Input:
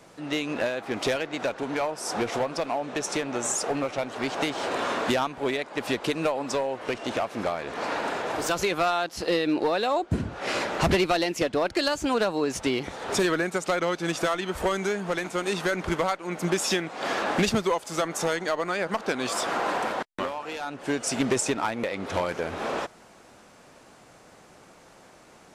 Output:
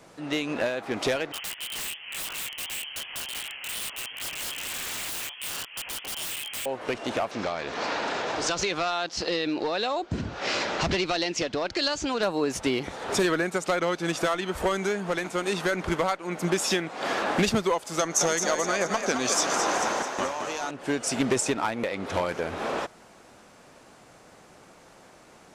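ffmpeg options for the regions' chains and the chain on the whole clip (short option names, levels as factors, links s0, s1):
-filter_complex "[0:a]asettb=1/sr,asplit=3[s0][s1][s2];[s0]atrim=end=1.324[s3];[s1]atrim=start=1.32:end=6.66,asetpts=PTS-STARTPTS,afade=t=in:d=0.004:c=qsin,afade=t=out:st=5.336:d=0.004:c=qsin,lowpass=f=2900:t=q:w=0.5098,lowpass=f=2900:t=q:w=0.6013,lowpass=f=2900:t=q:w=0.9,lowpass=f=2900:t=q:w=2.563,afreqshift=-3400,flanger=delay=19.5:depth=5.2:speed=2.7,aeval=exprs='(mod(26.6*val(0)+1,2)-1)/26.6':c=same[s4];[s2]atrim=start=6.656[s5];[s3][s4]acrossfade=d=0.004:c1=hsin:c2=qsin[s6];[s6][s5]acrossfade=d=0.004:c1=qsin:c2=hsin,asettb=1/sr,asplit=3[s7][s8][s9];[s7]atrim=end=7.314[s10];[s8]atrim=start=7.31:end=12.23,asetpts=PTS-STARTPTS,afade=t=in:d=0.004:c=qsin,afade=t=out:st=4.916:d=0.004:c=qsin,lowpass=f=6100:w=0.5412,lowpass=f=6100:w=1.3066,acompressor=threshold=0.0501:ratio=2.5:attack=3.2:release=140:knee=1:detection=peak,highshelf=f=3800:g=11.5[s11];[s9]atrim=start=12.226[s12];[s10][s11]acrossfade=d=0.004:c1=hsin:c2=qsin[s13];[s13][s12]acrossfade=d=0.004:c1=qsin:c2=hsin,asettb=1/sr,asplit=3[s14][s15][s16];[s14]atrim=end=17.994[s17];[s15]atrim=start=17.99:end=20.71,asetpts=PTS-STARTPTS,afade=t=in:d=0.004:c=qsin,afade=t=out:st=2.716:d=0.004:c=qsin,equalizer=f=6200:w=3.4:g=15,asplit=8[s18][s19][s20][s21][s22][s23][s24][s25];[s19]adelay=217,afreqshift=41,volume=0.473[s26];[s20]adelay=434,afreqshift=82,volume=0.269[s27];[s21]adelay=651,afreqshift=123,volume=0.153[s28];[s22]adelay=868,afreqshift=164,volume=0.0881[s29];[s23]adelay=1085,afreqshift=205,volume=0.0501[s30];[s24]adelay=1302,afreqshift=246,volume=0.0285[s31];[s25]adelay=1519,afreqshift=287,volume=0.0162[s32];[s18][s26][s27][s28][s29][s30][s31][s32]amix=inputs=8:normalize=0,atrim=end_sample=119952[s33];[s16]atrim=start=20.706[s34];[s17][s33]acrossfade=d=0.004:c1=hsin:c2=qsin[s35];[s35][s34]acrossfade=d=0.004:c1=qsin:c2=hsin"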